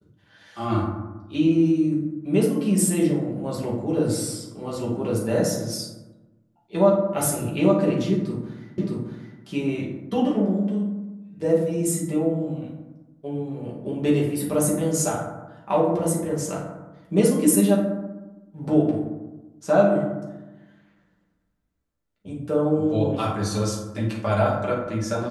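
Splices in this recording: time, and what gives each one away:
8.78 repeat of the last 0.62 s

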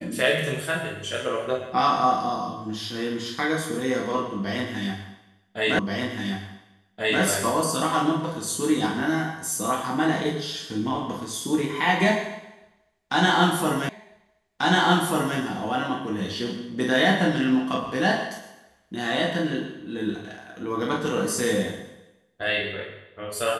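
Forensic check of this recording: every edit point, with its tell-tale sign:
5.79 repeat of the last 1.43 s
13.89 repeat of the last 1.49 s

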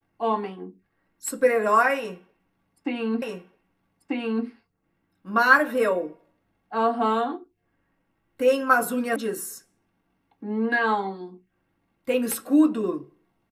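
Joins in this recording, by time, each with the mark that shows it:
3.22 repeat of the last 1.24 s
9.16 sound cut off

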